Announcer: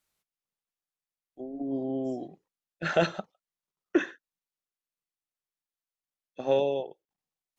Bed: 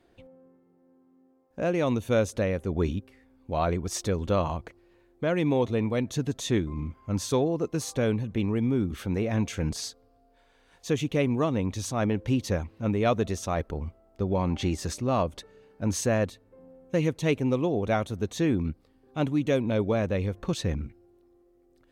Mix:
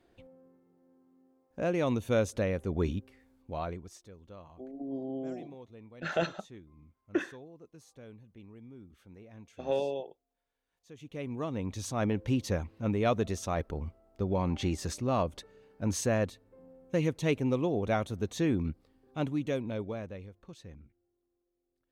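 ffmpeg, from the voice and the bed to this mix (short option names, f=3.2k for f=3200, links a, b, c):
-filter_complex "[0:a]adelay=3200,volume=-5.5dB[a];[1:a]volume=17.5dB,afade=t=out:st=3.15:d=0.85:silence=0.0891251,afade=t=in:st=10.95:d=1.08:silence=0.0891251,afade=t=out:st=18.93:d=1.39:silence=0.141254[b];[a][b]amix=inputs=2:normalize=0"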